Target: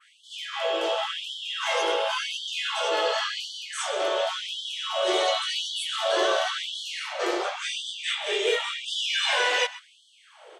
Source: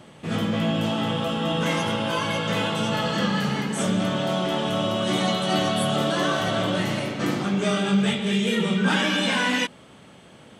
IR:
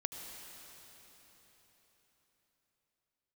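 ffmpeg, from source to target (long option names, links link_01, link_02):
-filter_complex "[0:a]lowpass=8700,equalizer=frequency=570:width=0.6:gain=7,asplit=2[link_01][link_02];[link_02]adelay=128.3,volume=-16dB,highshelf=frequency=4000:gain=-2.89[link_03];[link_01][link_03]amix=inputs=2:normalize=0,acrossover=split=620|1500[link_04][link_05][link_06];[link_05]alimiter=limit=-23.5dB:level=0:latency=1[link_07];[link_04][link_07][link_06]amix=inputs=3:normalize=0,adynamicequalizer=threshold=0.0141:dfrequency=5000:dqfactor=0.72:tfrequency=5000:tqfactor=0.72:attack=5:release=100:ratio=0.375:range=2:mode=boostabove:tftype=bell,afftfilt=real='re*gte(b*sr/1024,310*pow(3000/310,0.5+0.5*sin(2*PI*0.92*pts/sr)))':imag='im*gte(b*sr/1024,310*pow(3000/310,0.5+0.5*sin(2*PI*0.92*pts/sr)))':win_size=1024:overlap=0.75,volume=-2dB"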